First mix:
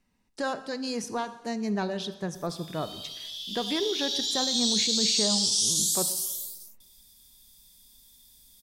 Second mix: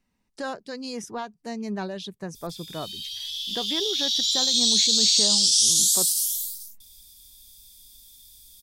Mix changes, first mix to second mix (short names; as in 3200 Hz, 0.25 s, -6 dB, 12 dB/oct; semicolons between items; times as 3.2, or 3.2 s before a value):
background +6.0 dB; reverb: off